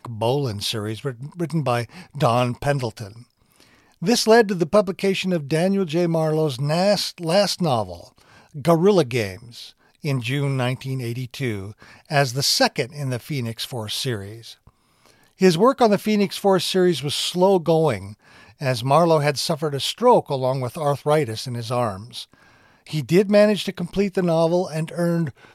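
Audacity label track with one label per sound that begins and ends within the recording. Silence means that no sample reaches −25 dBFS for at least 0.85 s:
4.020000	14.250000	sound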